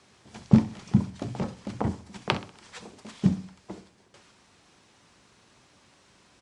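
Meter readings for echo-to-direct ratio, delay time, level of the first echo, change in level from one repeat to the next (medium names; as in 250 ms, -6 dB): -14.5 dB, 64 ms, -15.5 dB, -7.0 dB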